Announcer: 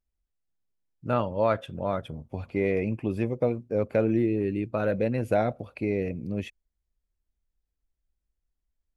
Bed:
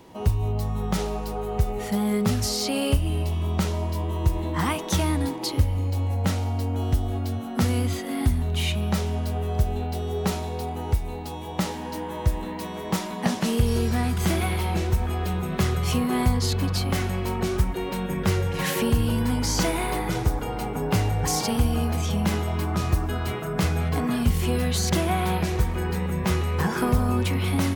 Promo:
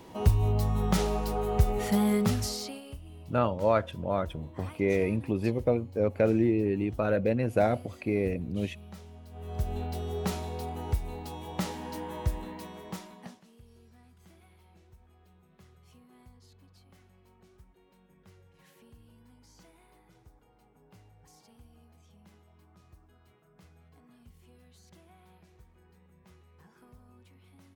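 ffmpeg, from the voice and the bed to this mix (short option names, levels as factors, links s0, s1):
-filter_complex "[0:a]adelay=2250,volume=0.944[s0];[1:a]volume=5.96,afade=t=out:st=2.01:d=0.81:silence=0.0841395,afade=t=in:st=9.3:d=0.47:silence=0.158489,afade=t=out:st=12.15:d=1.28:silence=0.0375837[s1];[s0][s1]amix=inputs=2:normalize=0"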